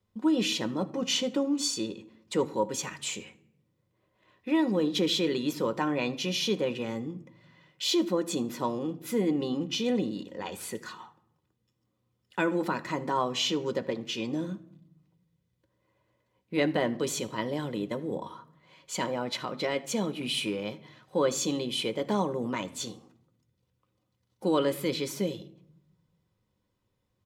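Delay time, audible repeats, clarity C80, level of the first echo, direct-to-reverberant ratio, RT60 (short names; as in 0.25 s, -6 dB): 79 ms, 1, 21.0 dB, -23.5 dB, 8.0 dB, 0.75 s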